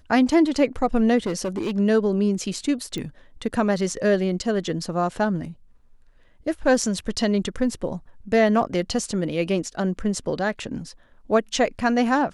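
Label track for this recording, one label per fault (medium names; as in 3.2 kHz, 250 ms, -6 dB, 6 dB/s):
1.260000	1.780000	clipped -21.5 dBFS
2.980000	2.980000	pop -18 dBFS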